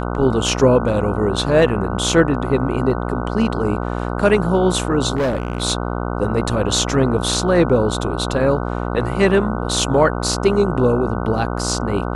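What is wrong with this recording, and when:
buzz 60 Hz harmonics 25 -23 dBFS
5.15–5.63 clipped -15.5 dBFS

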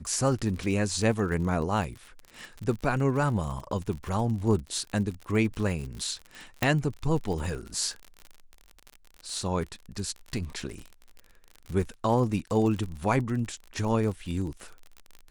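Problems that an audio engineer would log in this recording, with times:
crackle 48/s -34 dBFS
6.63 pop -9 dBFS

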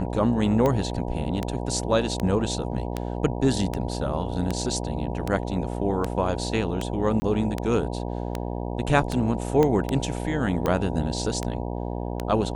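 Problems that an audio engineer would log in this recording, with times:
buzz 60 Hz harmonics 16 -30 dBFS
tick 78 rpm -12 dBFS
7.2–7.22 gap 20 ms
9.63 pop -10 dBFS

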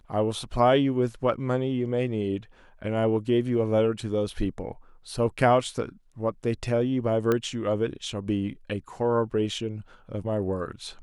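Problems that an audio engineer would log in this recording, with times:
7.32 pop -12 dBFS

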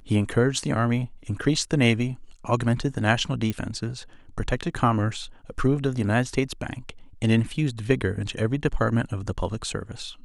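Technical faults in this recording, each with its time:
3.5 pop -15 dBFS

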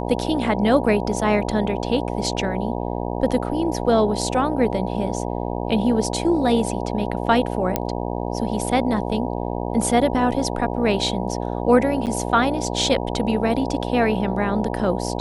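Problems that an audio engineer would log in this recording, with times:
buzz 60 Hz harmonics 16 -26 dBFS
7.76 pop -5 dBFS
12.06–12.07 gap 8.6 ms

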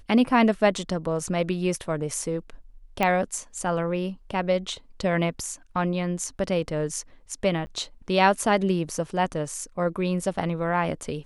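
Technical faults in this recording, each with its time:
3.03 pop -10 dBFS
7.66–7.67 gap 10 ms

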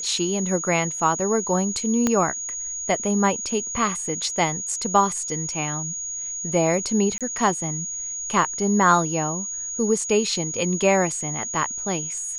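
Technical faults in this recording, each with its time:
tone 6700 Hz -28 dBFS
2.07 pop -7 dBFS
7.18–7.21 gap 27 ms

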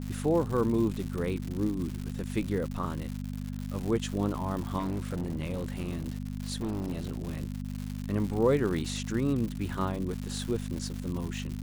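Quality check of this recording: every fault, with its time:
crackle 210/s -34 dBFS
hum 50 Hz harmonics 5 -36 dBFS
4.78–7.4 clipped -28 dBFS

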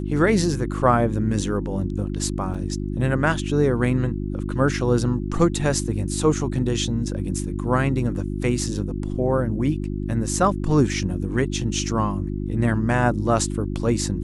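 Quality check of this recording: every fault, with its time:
hum 50 Hz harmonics 7 -27 dBFS
2.54 gap 4.8 ms

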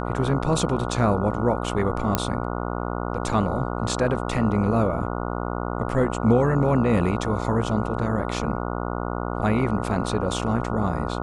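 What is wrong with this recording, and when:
buzz 60 Hz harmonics 24 -28 dBFS
2.15 pop -4 dBFS

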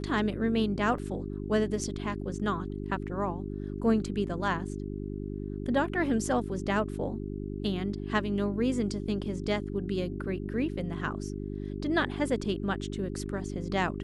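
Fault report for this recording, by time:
hum 50 Hz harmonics 8 -36 dBFS
0.98 gap 3.8 ms

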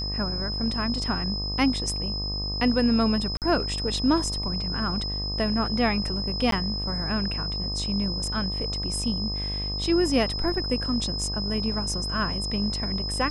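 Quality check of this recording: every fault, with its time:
buzz 50 Hz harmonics 25 -32 dBFS
tone 5100 Hz -30 dBFS
3.37–3.42 gap 48 ms
6.51–6.52 gap 13 ms

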